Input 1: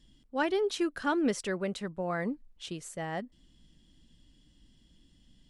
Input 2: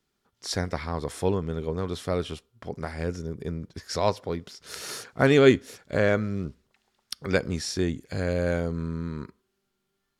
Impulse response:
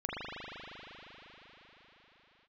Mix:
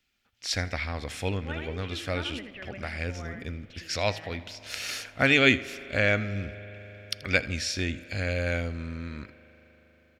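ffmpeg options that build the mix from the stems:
-filter_complex "[0:a]lowpass=frequency=2700:width=0.5412,lowpass=frequency=2700:width=1.3066,adelay=1100,volume=-6.5dB,asplit=2[link_01][link_02];[link_02]volume=-5dB[link_03];[1:a]volume=1.5dB,asplit=3[link_04][link_05][link_06];[link_05]volume=-23dB[link_07];[link_06]volume=-19dB[link_08];[2:a]atrim=start_sample=2205[link_09];[link_07][link_09]afir=irnorm=-1:irlink=0[link_10];[link_03][link_08]amix=inputs=2:normalize=0,aecho=0:1:81|162|243|324:1|0.29|0.0841|0.0244[link_11];[link_01][link_04][link_10][link_11]amix=inputs=4:normalize=0,equalizer=frequency=160:width_type=o:width=0.67:gain=-11,equalizer=frequency=400:width_type=o:width=0.67:gain=-12,equalizer=frequency=1000:width_type=o:width=0.67:gain=-10,equalizer=frequency=2500:width_type=o:width=0.67:gain=10,equalizer=frequency=10000:width_type=o:width=0.67:gain=-7"

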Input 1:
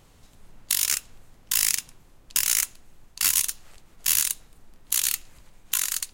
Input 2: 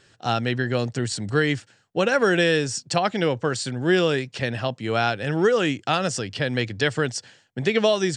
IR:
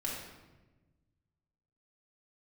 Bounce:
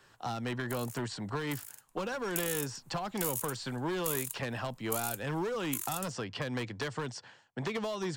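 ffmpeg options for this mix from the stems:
-filter_complex "[0:a]acompressor=threshold=-33dB:ratio=3,aexciter=amount=2.7:drive=7.1:freq=7100,volume=-12.5dB,afade=type=in:start_time=1.85:duration=0.27:silence=0.298538[link_01];[1:a]acrossover=split=120|4400[link_02][link_03][link_04];[link_02]acompressor=threshold=-44dB:ratio=4[link_05];[link_03]acompressor=threshold=-21dB:ratio=4[link_06];[link_04]acompressor=threshold=-44dB:ratio=4[link_07];[link_05][link_06][link_07]amix=inputs=3:normalize=0,asoftclip=type=hard:threshold=-21.5dB,volume=-7.5dB[link_08];[link_01][link_08]amix=inputs=2:normalize=0,equalizer=frequency=1000:width_type=o:width=0.91:gain=12.5,acrossover=split=400|3000[link_09][link_10][link_11];[link_10]acompressor=threshold=-37dB:ratio=6[link_12];[link_09][link_12][link_11]amix=inputs=3:normalize=0"

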